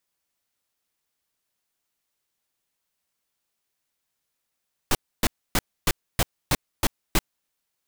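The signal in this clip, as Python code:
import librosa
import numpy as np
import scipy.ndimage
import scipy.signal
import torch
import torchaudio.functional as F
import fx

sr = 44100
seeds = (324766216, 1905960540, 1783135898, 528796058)

y = fx.noise_burst(sr, seeds[0], colour='pink', on_s=0.04, off_s=0.28, bursts=8, level_db=-19.5)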